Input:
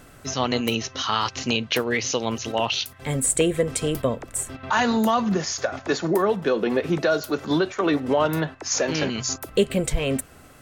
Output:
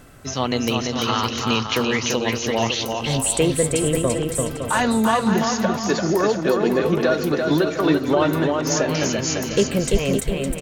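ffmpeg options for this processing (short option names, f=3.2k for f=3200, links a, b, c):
-filter_complex "[0:a]lowshelf=f=370:g=3,asplit=2[a][b];[b]aecho=0:1:340|561|704.6|798|858.7:0.631|0.398|0.251|0.158|0.1[c];[a][c]amix=inputs=2:normalize=0"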